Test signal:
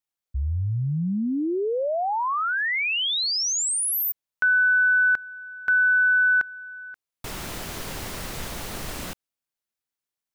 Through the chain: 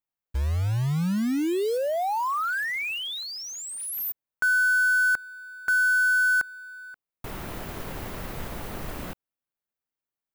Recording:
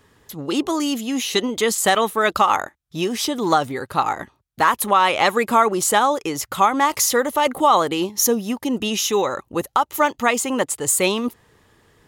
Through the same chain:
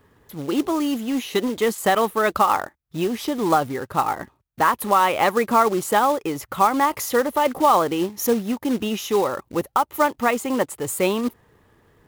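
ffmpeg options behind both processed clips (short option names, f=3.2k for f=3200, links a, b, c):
-af "equalizer=f=6.4k:t=o:w=2.3:g=-12.5,acrusher=bits=4:mode=log:mix=0:aa=0.000001"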